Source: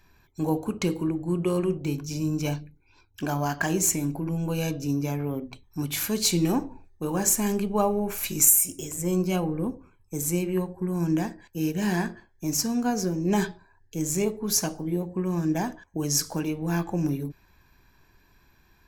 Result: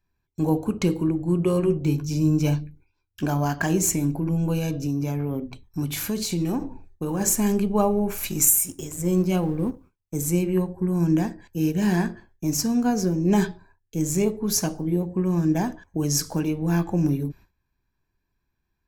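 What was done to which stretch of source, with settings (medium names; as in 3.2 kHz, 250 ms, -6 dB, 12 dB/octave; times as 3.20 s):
1.45–3.28 s: doubling 13 ms -9 dB
4.57–7.21 s: compression, threshold -25 dBFS
8.29–10.15 s: companding laws mixed up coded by A
whole clip: gate with hold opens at -46 dBFS; bass shelf 390 Hz +6 dB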